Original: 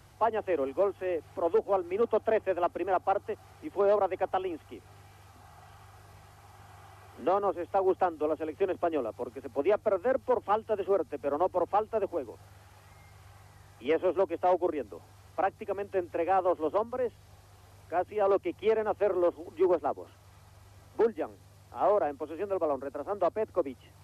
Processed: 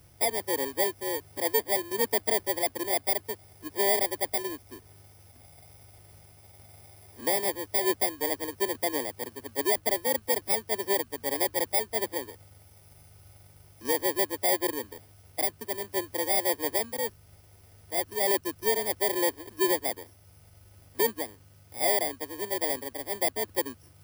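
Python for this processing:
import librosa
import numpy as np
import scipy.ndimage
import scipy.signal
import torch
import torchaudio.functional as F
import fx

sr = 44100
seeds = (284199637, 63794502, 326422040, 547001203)

y = fx.bit_reversed(x, sr, seeds[0], block=32)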